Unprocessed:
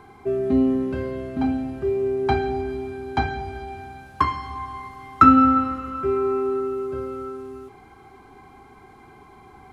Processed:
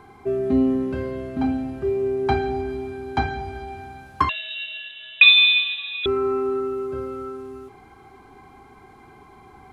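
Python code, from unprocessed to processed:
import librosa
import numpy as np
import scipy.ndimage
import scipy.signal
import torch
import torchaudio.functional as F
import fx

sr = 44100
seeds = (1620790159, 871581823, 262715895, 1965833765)

y = fx.freq_invert(x, sr, carrier_hz=3800, at=(4.29, 6.06))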